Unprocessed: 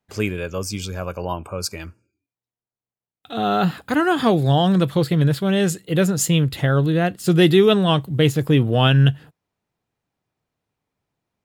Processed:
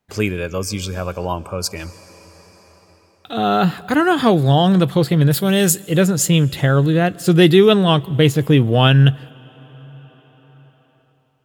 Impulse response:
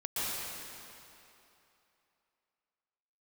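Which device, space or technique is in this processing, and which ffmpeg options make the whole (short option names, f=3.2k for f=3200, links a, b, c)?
ducked reverb: -filter_complex "[0:a]asettb=1/sr,asplit=3[a][b][c];[a]atrim=end=5.314[d];[b]atrim=start=5.31:end=5.83,asetpts=PTS-STARTPTS,afade=t=in:d=0.004:c=qsin,afade=t=out:st=0.516:d=0.004:c=qsin,aemphasis=mode=production:type=50fm[e];[c]atrim=start=5.826[f];[d][e]acrossfade=d=0.004:c1=hsin:c2=qsin[g];[g][f]acrossfade=d=0.004:c1=qsin:c2=hsin,asplit=3[h][i][j];[1:a]atrim=start_sample=2205[k];[i][k]afir=irnorm=-1:irlink=0[l];[j]apad=whole_len=504880[m];[l][m]sidechaincompress=threshold=-35dB:ratio=8:attack=7.6:release=1130,volume=-9.5dB[n];[h][n]amix=inputs=2:normalize=0,volume=3dB"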